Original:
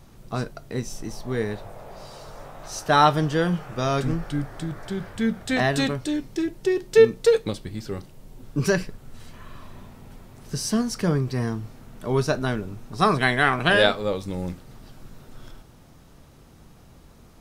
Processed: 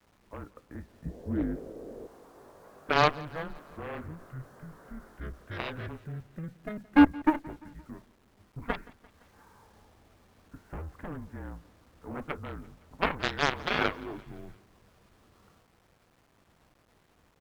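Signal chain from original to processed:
single-sideband voice off tune −160 Hz 200–2,100 Hz
bit reduction 9 bits
harmonic generator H 6 −24 dB, 7 −13 dB, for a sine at −3 dBFS
0:01.05–0:02.07: low shelf with overshoot 650 Hz +9.5 dB, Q 1.5
on a send: repeating echo 172 ms, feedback 57%, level −22.5 dB
on the sum: level −5.5 dB

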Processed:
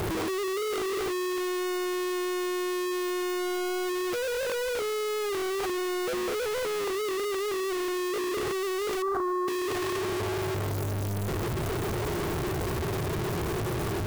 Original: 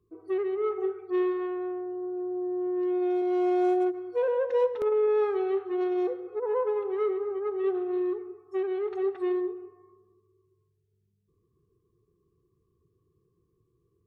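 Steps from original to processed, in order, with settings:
sign of each sample alone
0:09.02–0:09.48: high shelf with overshoot 1,800 Hz −13.5 dB, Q 3

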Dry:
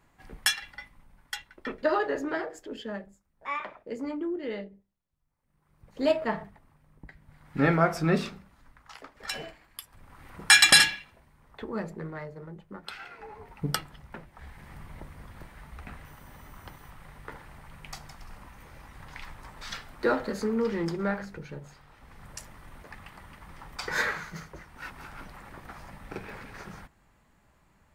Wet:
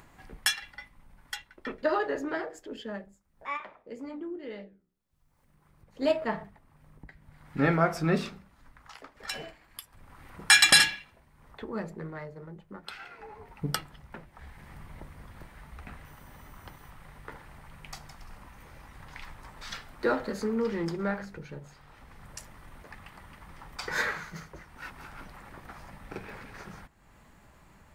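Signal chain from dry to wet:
upward compression, threshold −45 dBFS
0:03.57–0:06.02: flanger 1.9 Hz, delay 8.5 ms, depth 6.6 ms, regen −84%
level −1.5 dB

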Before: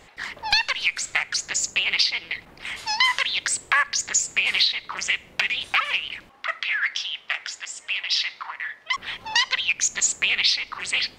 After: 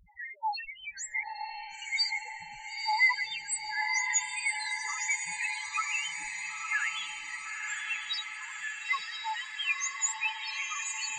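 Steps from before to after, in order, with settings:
dynamic equaliser 420 Hz, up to +3 dB, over −48 dBFS, Q 1.4
gate pattern "xxxx.x.x..." 172 BPM −12 dB
spectral peaks only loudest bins 1
0:01.23–0:01.82: linear-phase brick-wall low-pass 1,100 Hz
on a send: feedback delay with all-pass diffusion 966 ms, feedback 62%, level −4 dB
on the sum: level +5.5 dB

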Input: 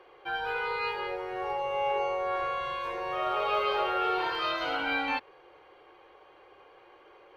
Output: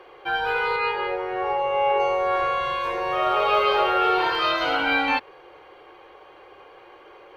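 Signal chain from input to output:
0:00.76–0:02.00: bass and treble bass −3 dB, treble −10 dB
level +8 dB

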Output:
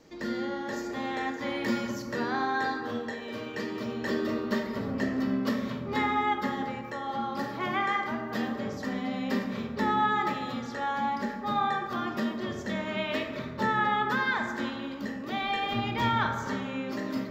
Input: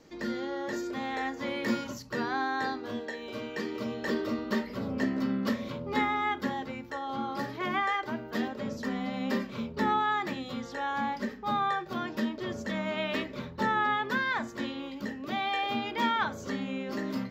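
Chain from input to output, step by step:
0:15.41–0:16.27: sub-octave generator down 1 octave, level −2 dB
on a send: convolution reverb RT60 1.8 s, pre-delay 18 ms, DRR 4.5 dB

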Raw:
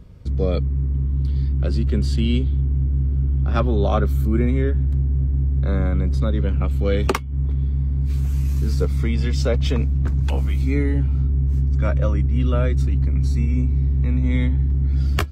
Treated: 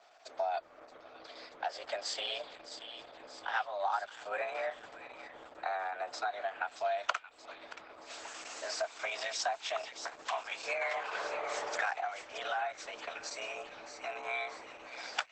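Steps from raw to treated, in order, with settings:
0:10.81–0:11.99: ceiling on every frequency bin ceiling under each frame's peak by 20 dB
dynamic equaliser 890 Hz, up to +7 dB, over −40 dBFS, Q 0.81
frequency shifter +190 Hz
0:05.14–0:06.33: upward compression, threshold −37 dBFS
elliptic high-pass filter 680 Hz, stop band 70 dB
downward compressor 5 to 1, threshold −34 dBFS, peak gain reduction 18.5 dB
delay with a high-pass on its return 627 ms, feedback 54%, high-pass 1,900 Hz, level −9 dB
level +2 dB
Opus 10 kbit/s 48,000 Hz

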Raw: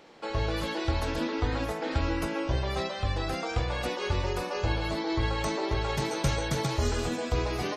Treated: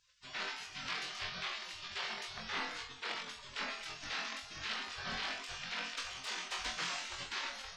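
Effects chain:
wave folding −23 dBFS
gate on every frequency bin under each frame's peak −25 dB weak
high-frequency loss of the air 140 metres
flutter between parallel walls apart 3.9 metres, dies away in 0.26 s
level +6 dB

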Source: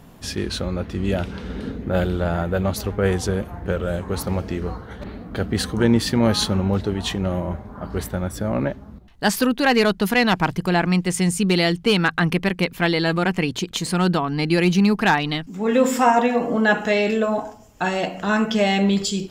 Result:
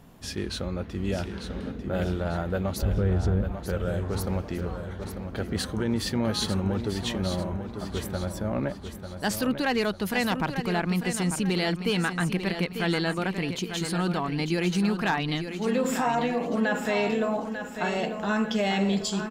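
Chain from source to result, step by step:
0:02.82–0:03.52: RIAA equalisation playback
brickwall limiter −11.5 dBFS, peak gain reduction 10 dB
on a send: repeating echo 895 ms, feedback 42%, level −8.5 dB
on the sum: level −6 dB

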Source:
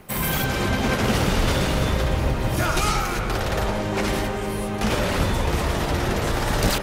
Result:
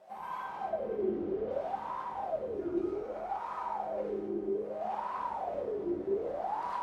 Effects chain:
bit-depth reduction 6 bits, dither triangular
0:00.70–0:01.51: high-frequency loss of the air 130 metres
delay that swaps between a low-pass and a high-pass 333 ms, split 860 Hz, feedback 72%, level −5 dB
convolution reverb RT60 0.75 s, pre-delay 3 ms, DRR 0 dB
LFO wah 0.63 Hz 350–1,000 Hz, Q 13
level −1 dB

